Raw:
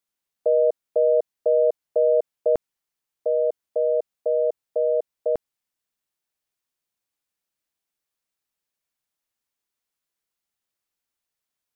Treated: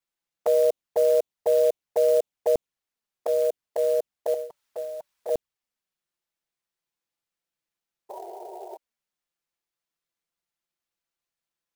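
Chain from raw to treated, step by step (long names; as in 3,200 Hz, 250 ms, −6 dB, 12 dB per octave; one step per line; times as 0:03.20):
0:04.34–0:05.29: drawn EQ curve 170 Hz 0 dB, 590 Hz −10 dB, 920 Hz +12 dB
0:08.09–0:08.77: sound drawn into the spectrogram noise 350–960 Hz −36 dBFS
flanger swept by the level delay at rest 5.9 ms, full sweep at −20 dBFS
converter with an unsteady clock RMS 0.022 ms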